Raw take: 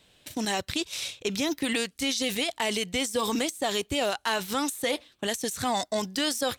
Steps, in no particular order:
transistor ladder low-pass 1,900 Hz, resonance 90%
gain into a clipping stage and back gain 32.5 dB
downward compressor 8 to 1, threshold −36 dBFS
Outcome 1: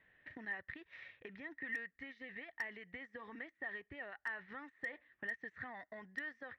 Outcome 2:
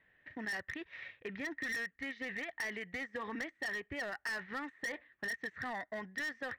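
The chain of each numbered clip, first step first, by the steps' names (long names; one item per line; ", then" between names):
downward compressor, then transistor ladder low-pass, then gain into a clipping stage and back
transistor ladder low-pass, then gain into a clipping stage and back, then downward compressor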